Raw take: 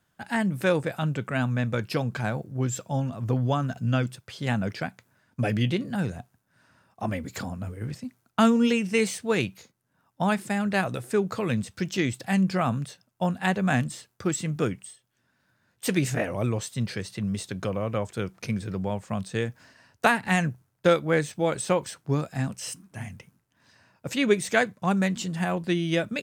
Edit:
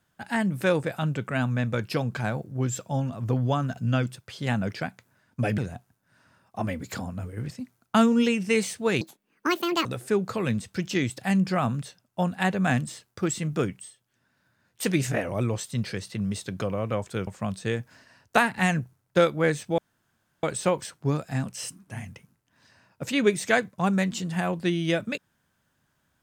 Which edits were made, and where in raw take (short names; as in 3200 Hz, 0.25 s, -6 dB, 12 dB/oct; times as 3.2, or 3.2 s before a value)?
5.58–6.02 cut
9.45–10.88 speed 170%
18.3–18.96 cut
21.47 insert room tone 0.65 s